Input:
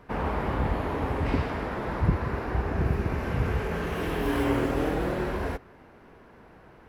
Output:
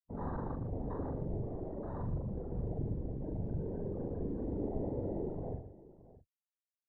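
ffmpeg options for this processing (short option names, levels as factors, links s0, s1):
-filter_complex "[0:a]aeval=exprs='(tanh(44.7*val(0)+0.6)-tanh(0.6))/44.7':c=same,afftfilt=real='re*gte(hypot(re,im),0.0398)':imag='im*gte(hypot(re,im),0.0398)':win_size=1024:overlap=0.75,afwtdn=0.0126,afftfilt=real='hypot(re,im)*cos(2*PI*random(0))':imag='hypot(re,im)*sin(2*PI*random(1))':win_size=512:overlap=0.75,asplit=2[s0][s1];[s1]adelay=42,volume=0.708[s2];[s0][s2]amix=inputs=2:normalize=0,asplit=2[s3][s4];[s4]aecho=0:1:118|624:0.282|0.126[s5];[s3][s5]amix=inputs=2:normalize=0,volume=1.41"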